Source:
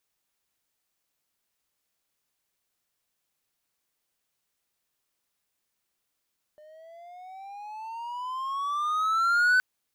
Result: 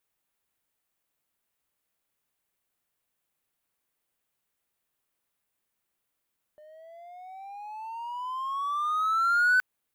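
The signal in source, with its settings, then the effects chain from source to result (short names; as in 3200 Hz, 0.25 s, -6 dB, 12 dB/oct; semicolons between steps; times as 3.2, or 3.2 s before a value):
gliding synth tone triangle, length 3.02 s, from 602 Hz, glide +16 st, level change +31 dB, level -15.5 dB
bell 5300 Hz -7 dB 1.2 oct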